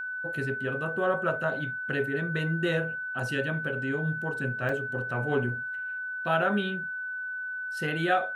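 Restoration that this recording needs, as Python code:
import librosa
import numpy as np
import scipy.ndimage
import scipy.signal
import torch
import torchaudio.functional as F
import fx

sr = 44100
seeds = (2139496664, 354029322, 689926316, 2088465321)

y = fx.notch(x, sr, hz=1500.0, q=30.0)
y = fx.fix_interpolate(y, sr, at_s=(4.69,), length_ms=2.8)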